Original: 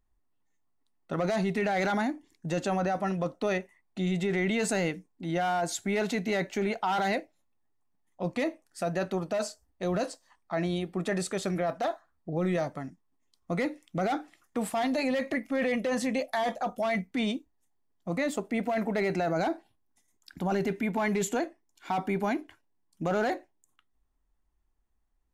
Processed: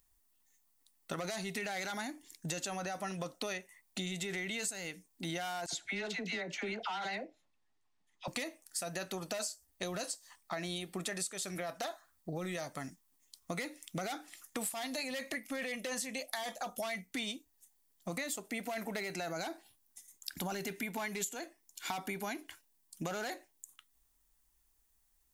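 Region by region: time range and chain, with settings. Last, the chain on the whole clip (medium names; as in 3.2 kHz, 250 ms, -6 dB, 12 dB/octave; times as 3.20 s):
5.66–8.28 s: low-pass 3.7 kHz + phase dispersion lows, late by 69 ms, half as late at 1.1 kHz
whole clip: pre-emphasis filter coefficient 0.9; compression 10:1, threshold -52 dBFS; trim +16.5 dB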